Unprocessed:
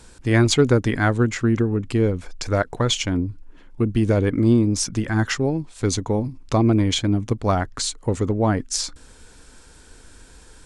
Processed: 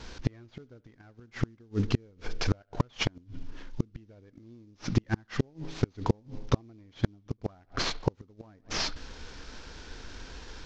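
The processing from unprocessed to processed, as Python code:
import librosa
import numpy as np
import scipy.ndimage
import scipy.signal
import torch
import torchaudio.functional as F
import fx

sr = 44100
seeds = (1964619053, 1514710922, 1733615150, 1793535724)

y = fx.cvsd(x, sr, bps=32000)
y = fx.echo_bbd(y, sr, ms=69, stages=2048, feedback_pct=58, wet_db=-23)
y = fx.gate_flip(y, sr, shuts_db=-14.0, range_db=-38)
y = y * librosa.db_to_amplitude(3.0)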